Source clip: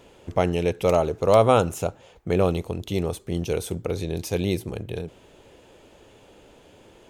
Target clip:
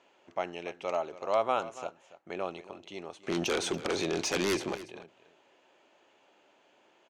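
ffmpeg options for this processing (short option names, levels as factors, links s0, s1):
-filter_complex "[0:a]highpass=450,equalizer=f=470:t=q:w=4:g=-10,equalizer=f=3600:t=q:w=4:g=-5,equalizer=f=5100:t=q:w=4:g=-5,lowpass=f=6000:w=0.5412,lowpass=f=6000:w=1.3066,asettb=1/sr,asplit=3[s0][s1][s2];[s0]atrim=end=3.234[s3];[s1]atrim=start=3.23:end=4.76,asetpts=PTS-STARTPTS,afade=t=in:d=0.004:c=qsin,afade=t=out:st=1.526:d=0.004:c=qsin,aeval=exprs='0.15*sin(PI/2*5.01*val(0)/0.15)':c=same[s4];[s2]atrim=start=4.756[s5];[s3][s4]acrossfade=d=0.004:c1=hsin:c2=qsin[s6];[s6][s5]acrossfade=d=0.004:c1=qsin:c2=hsin,aecho=1:1:283:0.158,volume=0.422"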